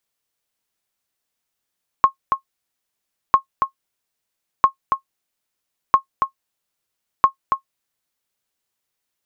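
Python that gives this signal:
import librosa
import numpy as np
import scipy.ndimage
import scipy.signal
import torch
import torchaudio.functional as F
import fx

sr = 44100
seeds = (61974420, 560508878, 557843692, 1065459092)

y = fx.sonar_ping(sr, hz=1080.0, decay_s=0.1, every_s=1.3, pings=5, echo_s=0.28, echo_db=-6.0, level_db=-2.0)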